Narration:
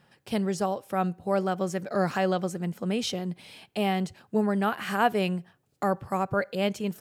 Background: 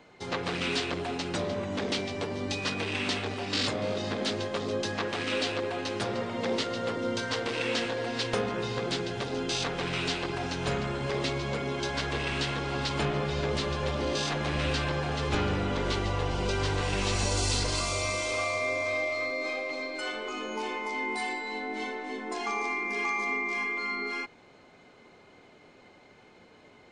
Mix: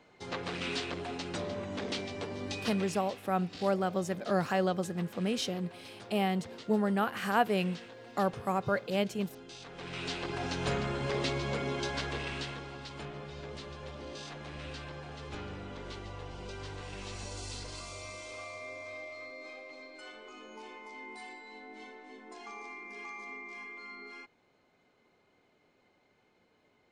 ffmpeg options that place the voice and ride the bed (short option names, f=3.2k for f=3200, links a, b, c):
-filter_complex "[0:a]adelay=2350,volume=-3.5dB[a];[1:a]volume=10.5dB,afade=t=out:st=2.6:d=0.42:silence=0.237137,afade=t=in:st=9.65:d=0.87:silence=0.158489,afade=t=out:st=11.7:d=1.08:silence=0.251189[b];[a][b]amix=inputs=2:normalize=0"